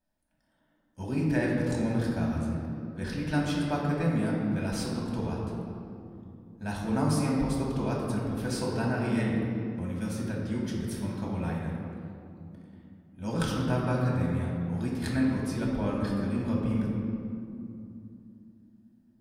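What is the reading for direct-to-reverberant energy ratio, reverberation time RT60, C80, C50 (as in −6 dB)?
−4.0 dB, 2.7 s, 1.5 dB, 0.0 dB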